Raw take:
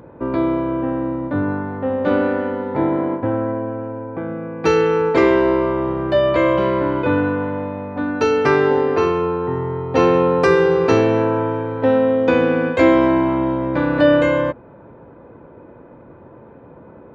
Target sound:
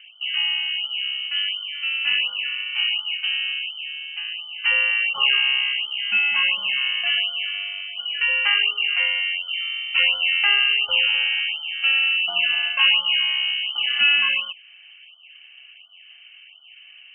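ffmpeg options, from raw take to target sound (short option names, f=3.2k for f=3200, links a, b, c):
-af "lowpass=f=2.7k:t=q:w=0.5098,lowpass=f=2.7k:t=q:w=0.6013,lowpass=f=2.7k:t=q:w=0.9,lowpass=f=2.7k:t=q:w=2.563,afreqshift=-3200,afftfilt=real='re*(1-between(b*sr/1024,250*pow(2100/250,0.5+0.5*sin(2*PI*1.4*pts/sr))/1.41,250*pow(2100/250,0.5+0.5*sin(2*PI*1.4*pts/sr))*1.41))':imag='im*(1-between(b*sr/1024,250*pow(2100/250,0.5+0.5*sin(2*PI*1.4*pts/sr))/1.41,250*pow(2100/250,0.5+0.5*sin(2*PI*1.4*pts/sr))*1.41))':win_size=1024:overlap=0.75,volume=-4.5dB"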